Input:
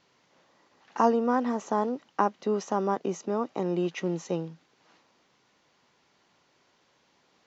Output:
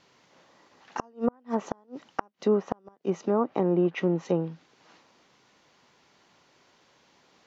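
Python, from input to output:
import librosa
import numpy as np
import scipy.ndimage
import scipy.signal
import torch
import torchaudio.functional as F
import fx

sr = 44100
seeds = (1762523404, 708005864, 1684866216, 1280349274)

y = fx.gate_flip(x, sr, shuts_db=-16.0, range_db=-37)
y = fx.env_lowpass_down(y, sr, base_hz=1400.0, full_db=-25.0)
y = F.gain(torch.from_numpy(y), 4.5).numpy()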